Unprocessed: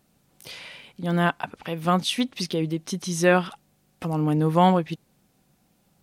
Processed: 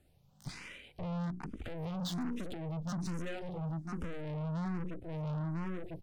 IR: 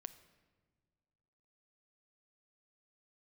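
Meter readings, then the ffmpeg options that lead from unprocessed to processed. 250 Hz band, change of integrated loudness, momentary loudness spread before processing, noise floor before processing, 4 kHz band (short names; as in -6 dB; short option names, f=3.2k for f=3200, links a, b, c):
-12.5 dB, -15.5 dB, 19 LU, -66 dBFS, -17.5 dB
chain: -filter_complex "[0:a]aemphasis=mode=reproduction:type=bsi,bandreject=f=60:t=h:w=6,bandreject=f=120:t=h:w=6,bandreject=f=180:t=h:w=6,bandreject=f=240:t=h:w=6,bandreject=f=300:t=h:w=6,bandreject=f=360:t=h:w=6,bandreject=f=420:t=h:w=6,bandreject=f=480:t=h:w=6,afwtdn=0.0316,highshelf=f=6.1k:g=11.5,asplit=2[a][b];[b]aecho=0:1:999|1998:0.141|0.0311[c];[a][c]amix=inputs=2:normalize=0,acompressor=threshold=-32dB:ratio=6,tremolo=f=1.7:d=0.32,acrossover=split=210|3000[d][e][f];[e]acompressor=threshold=-47dB:ratio=5[g];[d][g][f]amix=inputs=3:normalize=0,aeval=exprs='(tanh(355*val(0)+0.7)-tanh(0.7))/355':c=same,asplit=2[h][i];[i]afreqshift=1.2[j];[h][j]amix=inputs=2:normalize=1,volume=17dB"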